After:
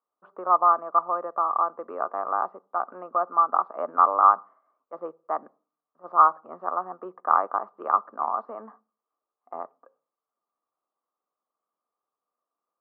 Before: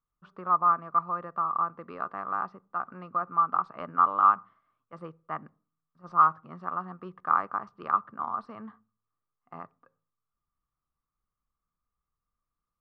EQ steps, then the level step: HPF 270 Hz 24 dB/oct; LPF 1300 Hz 12 dB/oct; bell 660 Hz +12.5 dB 1.5 oct; 0.0 dB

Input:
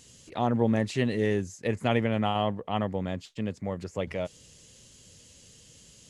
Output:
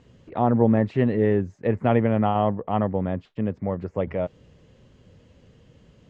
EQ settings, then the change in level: LPF 1400 Hz 12 dB/oct; +6.0 dB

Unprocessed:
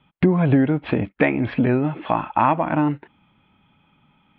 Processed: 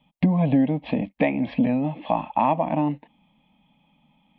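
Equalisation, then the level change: fixed phaser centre 380 Hz, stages 6; 0.0 dB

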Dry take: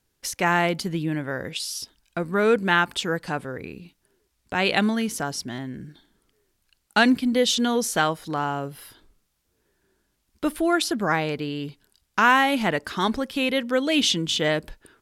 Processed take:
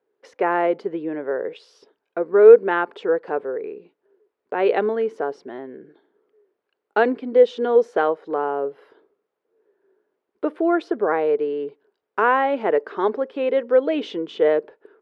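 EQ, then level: resonant high-pass 430 Hz, resonance Q 4.9; LPF 1500 Hz 12 dB/oct; -1.0 dB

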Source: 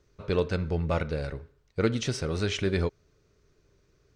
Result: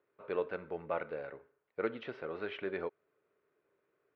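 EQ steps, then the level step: BPF 480–3000 Hz; air absorption 460 m; -2.5 dB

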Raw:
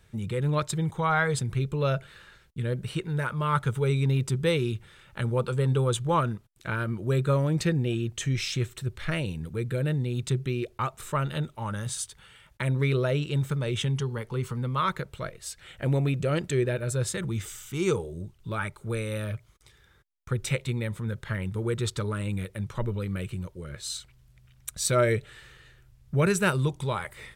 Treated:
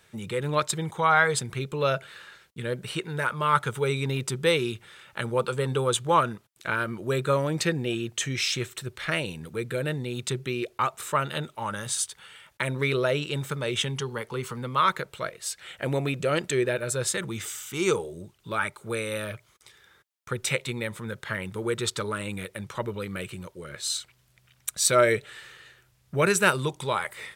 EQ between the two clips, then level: HPF 480 Hz 6 dB/oct; +5.5 dB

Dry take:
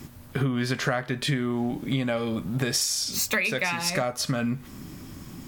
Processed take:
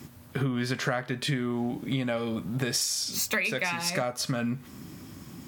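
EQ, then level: HPF 79 Hz; -2.5 dB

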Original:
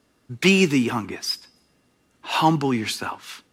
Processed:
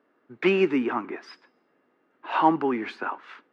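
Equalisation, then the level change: Chebyshev band-pass 330–1700 Hz, order 2; 0.0 dB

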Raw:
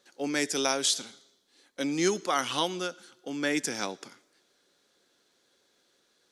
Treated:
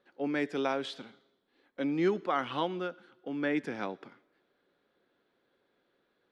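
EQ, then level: air absorption 490 m; 0.0 dB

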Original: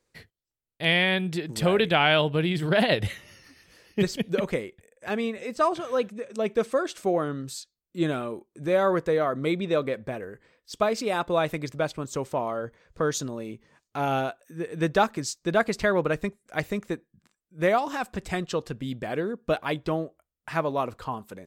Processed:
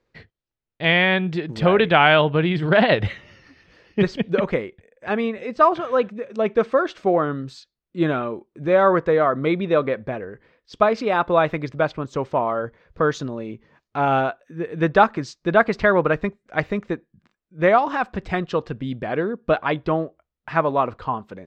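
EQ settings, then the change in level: dynamic EQ 1200 Hz, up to +5 dB, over -36 dBFS, Q 0.84; air absorption 210 m; +5.0 dB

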